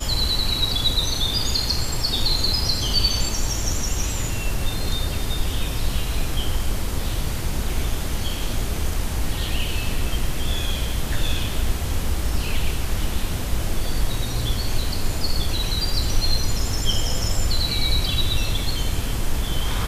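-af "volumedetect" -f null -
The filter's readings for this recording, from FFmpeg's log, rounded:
mean_volume: -20.6 dB
max_volume: -6.4 dB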